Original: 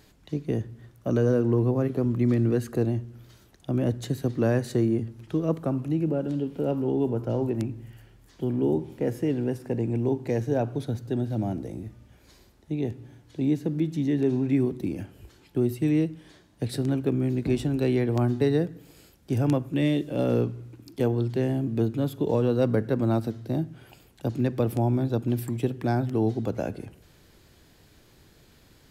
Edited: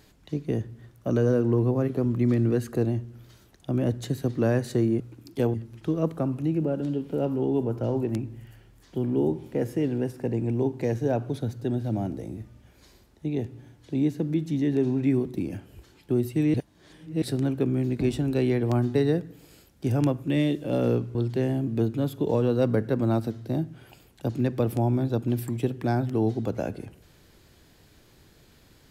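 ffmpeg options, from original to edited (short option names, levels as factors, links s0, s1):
-filter_complex "[0:a]asplit=6[s0][s1][s2][s3][s4][s5];[s0]atrim=end=5.002[s6];[s1]atrim=start=20.608:end=21.152[s7];[s2]atrim=start=4.998:end=16.002[s8];[s3]atrim=start=15.998:end=16.682,asetpts=PTS-STARTPTS,areverse[s9];[s4]atrim=start=16.678:end=20.612[s10];[s5]atrim=start=21.148[s11];[s6][s7]acrossfade=d=0.004:c1=hsin:c2=hsin[s12];[s12][s8]acrossfade=d=0.004:c1=hsin:c2=hsin[s13];[s13][s9]acrossfade=d=0.004:c1=hsin:c2=hsin[s14];[s14][s10]acrossfade=d=0.004:c1=hsin:c2=hsin[s15];[s15][s11]acrossfade=d=0.004:c1=hsin:c2=hsin"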